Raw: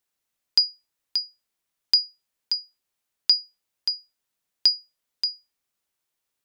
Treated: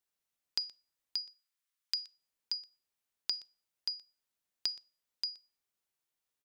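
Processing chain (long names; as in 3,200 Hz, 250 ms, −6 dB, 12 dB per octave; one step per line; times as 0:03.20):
0:01.21–0:01.99: high-pass filter 1,100 Hz 24 dB per octave
downward compressor, threshold −25 dBFS, peak gain reduction 11 dB
single-tap delay 122 ms −21 dB
on a send at −22 dB: convolution reverb RT60 0.35 s, pre-delay 33 ms
on the sum: level −7 dB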